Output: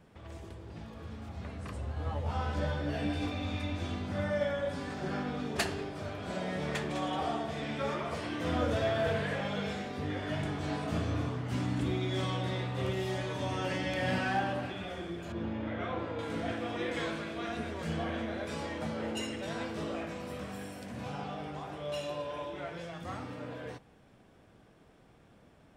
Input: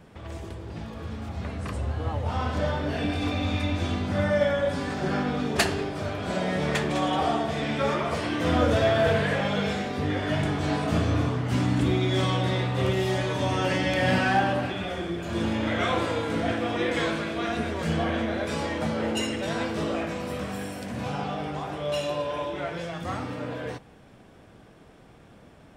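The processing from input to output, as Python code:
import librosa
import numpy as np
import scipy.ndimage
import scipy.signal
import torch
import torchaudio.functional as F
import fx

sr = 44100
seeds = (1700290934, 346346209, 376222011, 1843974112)

y = fx.doubler(x, sr, ms=14.0, db=-2.5, at=(1.95, 3.26))
y = fx.spacing_loss(y, sr, db_at_10k=27, at=(15.32, 16.19))
y = F.gain(torch.from_numpy(y), -8.5).numpy()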